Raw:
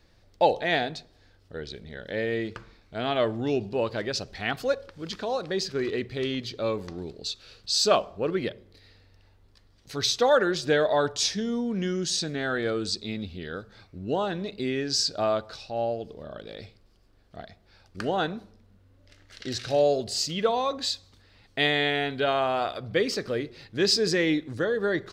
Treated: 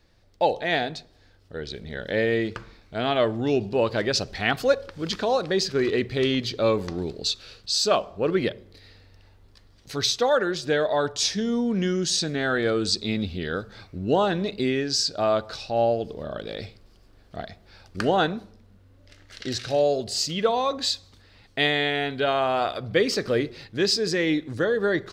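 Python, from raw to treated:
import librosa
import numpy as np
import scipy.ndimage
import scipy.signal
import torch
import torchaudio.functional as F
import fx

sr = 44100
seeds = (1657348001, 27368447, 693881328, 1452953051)

y = fx.rider(x, sr, range_db=4, speed_s=0.5)
y = F.gain(torch.from_numpy(y), 3.0).numpy()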